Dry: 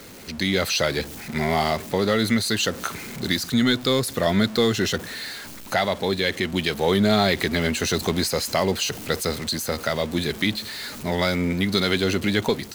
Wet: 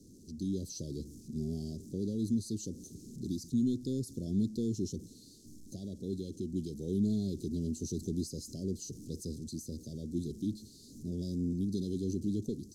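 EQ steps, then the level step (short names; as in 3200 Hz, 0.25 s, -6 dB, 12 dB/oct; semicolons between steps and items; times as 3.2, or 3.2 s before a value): elliptic band-stop 330–5800 Hz, stop band 60 dB; LPF 11000 Hz 12 dB/oct; high shelf 5200 Hz -9.5 dB; -8.5 dB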